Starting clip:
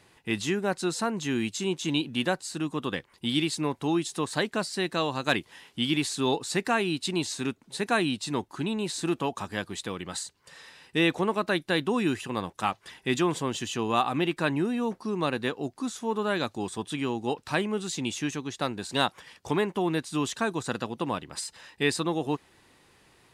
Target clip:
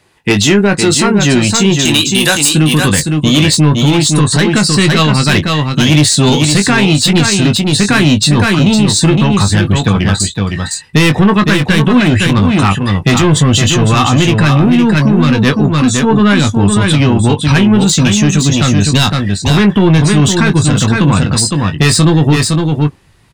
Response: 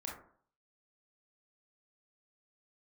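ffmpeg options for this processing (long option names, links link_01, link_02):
-filter_complex "[0:a]asettb=1/sr,asplit=3[link_01][link_02][link_03];[link_01]atrim=end=1.854[link_04];[link_02]atrim=start=1.85:end=2.49,asetpts=PTS-STARTPTS,afade=type=in:duration=0.004:curve=qsin,afade=type=out:start_time=0.636:duration=0.004:curve=qsin,aemphasis=mode=production:type=riaa[link_05];[link_03]atrim=start=2.486[link_06];[link_04][link_05]acrossfade=duration=0.004:curve1=hsin:curve2=qsin[link_07];[link_07][link_06]acrossfade=duration=0.004:curve1=qsin:curve2=hsin,asettb=1/sr,asplit=3[link_08][link_09][link_10];[link_08]atrim=end=9.714[link_11];[link_09]atrim=start=9.71:end=10.2,asetpts=PTS-STARTPTS,afade=type=in:duration=0.004:curve=qsin,afade=type=out:start_time=0.486:duration=0.004:curve=qsin,deesser=0.9[link_12];[link_10]atrim=start=10.196[link_13];[link_11][link_12]acrossfade=duration=0.004:curve1=hsin:curve2=qsin[link_14];[link_14][link_13]acrossfade=duration=0.004:curve1=qsin:curve2=hsin,afftdn=noise_reduction=19:noise_floor=-44,asubboost=boost=5:cutoff=150,acrossover=split=510|970[link_15][link_16][link_17];[link_16]acompressor=threshold=-53dB:ratio=6[link_18];[link_15][link_18][link_17]amix=inputs=3:normalize=0,asoftclip=type=tanh:threshold=-26dB,asplit=2[link_19][link_20];[link_20]adelay=20,volume=-8dB[link_21];[link_19][link_21]amix=inputs=2:normalize=0,aecho=1:1:511:0.531,alimiter=level_in=25.5dB:limit=-1dB:release=50:level=0:latency=1,volume=-1dB"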